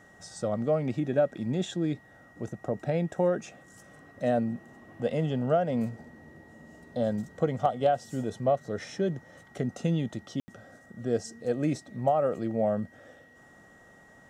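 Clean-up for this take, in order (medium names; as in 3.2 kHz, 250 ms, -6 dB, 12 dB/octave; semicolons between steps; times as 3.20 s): band-stop 1.9 kHz, Q 30; room tone fill 10.40–10.48 s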